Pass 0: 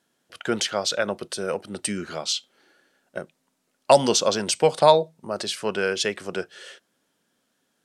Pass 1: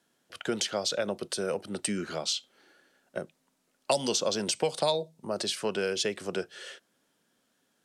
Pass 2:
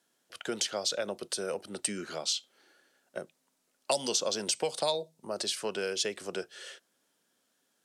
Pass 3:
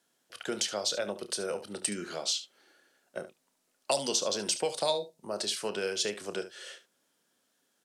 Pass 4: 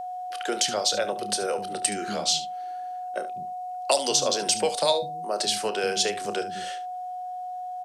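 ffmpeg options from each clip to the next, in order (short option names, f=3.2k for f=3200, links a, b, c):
-filter_complex "[0:a]acrossover=split=120|760|2800[a][b][c][d];[a]acompressor=threshold=-54dB:ratio=4[e];[b]acompressor=threshold=-26dB:ratio=4[f];[c]acompressor=threshold=-40dB:ratio=4[g];[d]acompressor=threshold=-27dB:ratio=4[h];[e][f][g][h]amix=inputs=4:normalize=0,volume=-1dB"
-af "bass=f=250:g=-6,treble=f=4k:g=4,volume=-3dB"
-af "aecho=1:1:29|72:0.251|0.211"
-filter_complex "[0:a]acrossover=split=240[a][b];[a]adelay=200[c];[c][b]amix=inputs=2:normalize=0,aeval=exprs='val(0)+0.0126*sin(2*PI*730*n/s)':c=same,volume=6.5dB"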